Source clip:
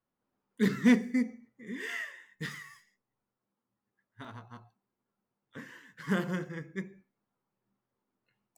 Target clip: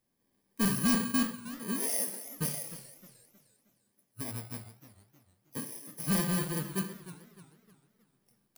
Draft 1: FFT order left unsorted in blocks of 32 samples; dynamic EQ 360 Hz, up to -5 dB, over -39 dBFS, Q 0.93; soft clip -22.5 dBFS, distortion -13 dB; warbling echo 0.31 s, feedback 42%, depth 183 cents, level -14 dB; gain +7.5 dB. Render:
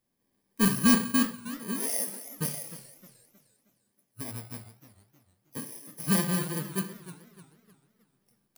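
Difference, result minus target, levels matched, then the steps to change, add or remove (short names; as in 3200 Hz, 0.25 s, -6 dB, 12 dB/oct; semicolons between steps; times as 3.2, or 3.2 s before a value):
soft clip: distortion -7 dB
change: soft clip -31 dBFS, distortion -6 dB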